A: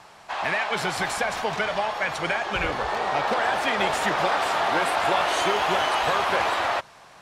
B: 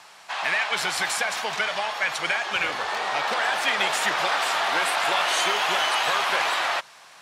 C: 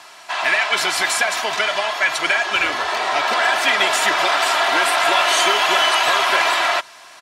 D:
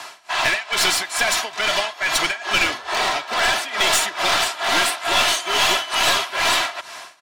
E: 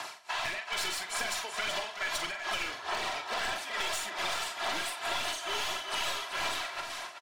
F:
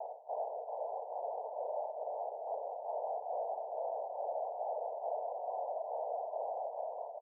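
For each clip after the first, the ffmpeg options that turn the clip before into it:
ffmpeg -i in.wav -af "highpass=130,tiltshelf=frequency=970:gain=-7,volume=-1.5dB" out.wav
ffmpeg -i in.wav -af "aecho=1:1:3:0.55,volume=5.5dB" out.wav
ffmpeg -i in.wav -filter_complex "[0:a]tremolo=f=2.3:d=0.92,acrossover=split=250|3000[link_01][link_02][link_03];[link_02]acompressor=threshold=-31dB:ratio=2[link_04];[link_01][link_04][link_03]amix=inputs=3:normalize=0,aeval=exprs='clip(val(0),-1,0.0531)':channel_layout=same,volume=7.5dB" out.wav
ffmpeg -i in.wav -filter_complex "[0:a]aphaser=in_gain=1:out_gain=1:delay=2.3:decay=0.35:speed=1.7:type=sinusoidal,acompressor=threshold=-26dB:ratio=5,asplit=2[link_01][link_02];[link_02]aecho=0:1:43|378|442:0.376|0.335|0.15[link_03];[link_01][link_03]amix=inputs=2:normalize=0,volume=-6.5dB" out.wav
ffmpeg -i in.wav -af "acrusher=samples=22:mix=1:aa=0.000001,asoftclip=type=tanh:threshold=-36dB,asuperpass=centerf=640:order=12:qfactor=1.6,volume=6.5dB" out.wav

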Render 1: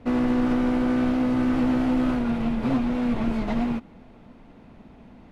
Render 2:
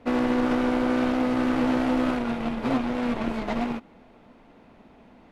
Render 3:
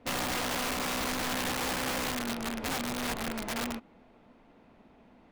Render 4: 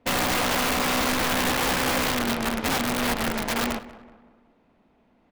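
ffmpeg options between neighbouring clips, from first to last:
ffmpeg -i in.wav -filter_complex "[0:a]bass=frequency=250:gain=-9,treble=frequency=4000:gain=-1,asplit=2[link_01][link_02];[link_02]acrusher=bits=3:mix=0:aa=0.5,volume=-8dB[link_03];[link_01][link_03]amix=inputs=2:normalize=0" out.wav
ffmpeg -i in.wav -af "aeval=exprs='(mod(10.6*val(0)+1,2)-1)/10.6':channel_layout=same,volume=-6dB" out.wav
ffmpeg -i in.wav -filter_complex "[0:a]aeval=exprs='0.0473*(cos(1*acos(clip(val(0)/0.0473,-1,1)))-cos(1*PI/2))+0.00473*(cos(5*acos(clip(val(0)/0.0473,-1,1)))-cos(5*PI/2))+0.0119*(cos(7*acos(clip(val(0)/0.0473,-1,1)))-cos(7*PI/2))':channel_layout=same,asplit=2[link_01][link_02];[link_02]adelay=188,lowpass=frequency=2000:poles=1,volume=-15.5dB,asplit=2[link_03][link_04];[link_04]adelay=188,lowpass=frequency=2000:poles=1,volume=0.49,asplit=2[link_05][link_06];[link_06]adelay=188,lowpass=frequency=2000:poles=1,volume=0.49,asplit=2[link_07][link_08];[link_08]adelay=188,lowpass=frequency=2000:poles=1,volume=0.49[link_09];[link_01][link_03][link_05][link_07][link_09]amix=inputs=5:normalize=0,volume=8dB" out.wav

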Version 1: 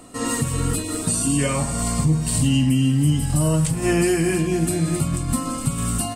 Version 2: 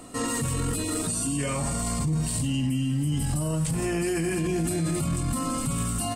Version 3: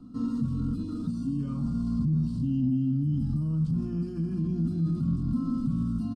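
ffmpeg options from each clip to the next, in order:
ffmpeg -i in.wav -af "alimiter=limit=-19.5dB:level=0:latency=1:release=14" out.wav
ffmpeg -i in.wav -filter_complex "[0:a]firequalizer=gain_entry='entry(110,0);entry(230,10);entry(360,-10);entry(600,-19);entry(1300,-4);entry(1900,-28);entry(3300,-13);entry(4900,-9);entry(7800,-29);entry(12000,-27)':delay=0.05:min_phase=1,acrossover=split=590|1400[link_01][link_02][link_03];[link_01]acontrast=31[link_04];[link_04][link_02][link_03]amix=inputs=3:normalize=0,volume=-8.5dB" out.wav

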